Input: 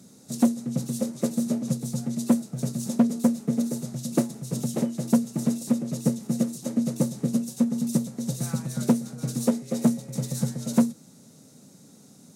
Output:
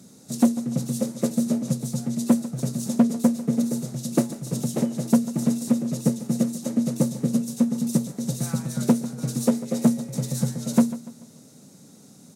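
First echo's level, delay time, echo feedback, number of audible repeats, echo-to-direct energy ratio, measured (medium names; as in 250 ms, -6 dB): -16.0 dB, 145 ms, 40%, 3, -15.5 dB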